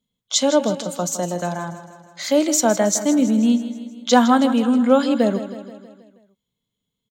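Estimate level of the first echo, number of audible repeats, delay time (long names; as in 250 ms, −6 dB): −12.5 dB, 5, 160 ms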